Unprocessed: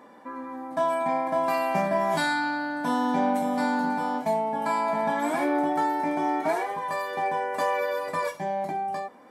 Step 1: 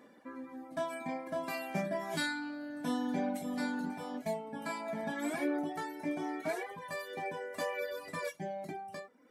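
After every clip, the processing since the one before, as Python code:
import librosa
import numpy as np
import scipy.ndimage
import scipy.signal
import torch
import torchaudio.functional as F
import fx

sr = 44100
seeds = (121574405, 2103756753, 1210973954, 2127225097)

y = fx.dereverb_blind(x, sr, rt60_s=1.0)
y = fx.peak_eq(y, sr, hz=920.0, db=-11.5, octaves=0.86)
y = y * librosa.db_to_amplitude(-4.0)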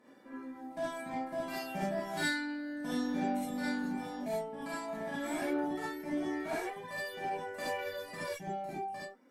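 y = fx.cheby_harmonics(x, sr, harmonics=(8,), levels_db=(-30,), full_scale_db=-21.5)
y = fx.rev_gated(y, sr, seeds[0], gate_ms=90, shape='rising', drr_db=-7.5)
y = y * librosa.db_to_amplitude(-7.5)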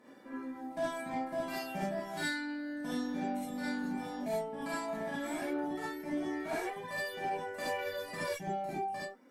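y = fx.rider(x, sr, range_db=3, speed_s=0.5)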